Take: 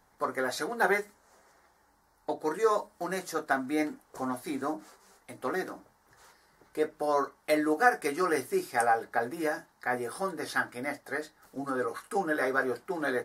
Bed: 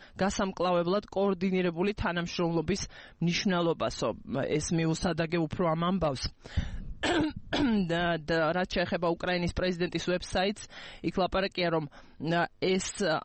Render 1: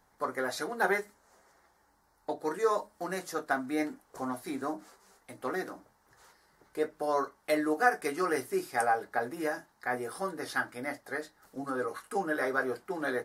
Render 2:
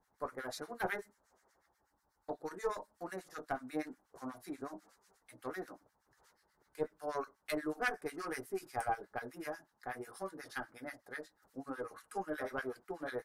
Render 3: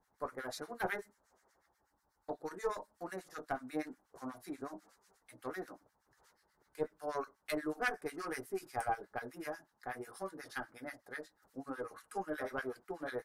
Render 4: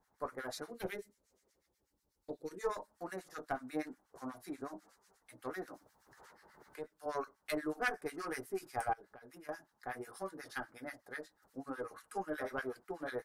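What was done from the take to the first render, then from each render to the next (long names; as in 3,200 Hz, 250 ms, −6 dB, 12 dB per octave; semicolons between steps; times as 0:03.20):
level −2 dB
tube saturation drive 15 dB, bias 0.8; two-band tremolo in antiphase 8.2 Hz, depth 100%, crossover 1,200 Hz
no processing that can be heard
0:00.70–0:02.61: flat-topped bell 1,100 Hz −12.5 dB; 0:05.73–0:07.06: multiband upward and downward compressor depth 70%; 0:08.93–0:09.49: downward compressor 8 to 1, threshold −52 dBFS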